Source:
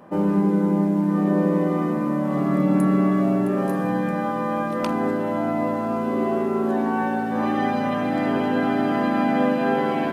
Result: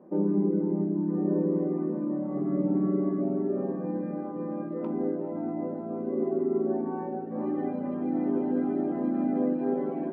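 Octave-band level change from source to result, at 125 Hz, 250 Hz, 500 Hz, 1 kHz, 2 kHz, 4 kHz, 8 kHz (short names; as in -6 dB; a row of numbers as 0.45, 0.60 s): -9.0 dB, -6.5 dB, -6.0 dB, -15.5 dB, under -20 dB, under -30 dB, n/a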